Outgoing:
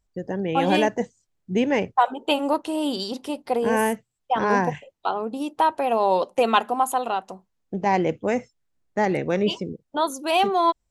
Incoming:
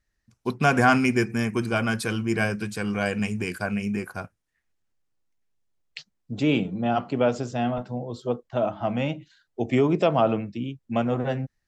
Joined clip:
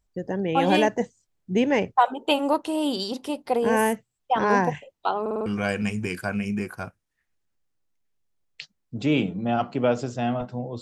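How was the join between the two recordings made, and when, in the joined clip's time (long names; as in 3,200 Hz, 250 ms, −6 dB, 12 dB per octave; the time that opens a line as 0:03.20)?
outgoing
0:05.21: stutter in place 0.05 s, 5 plays
0:05.46: continue with incoming from 0:02.83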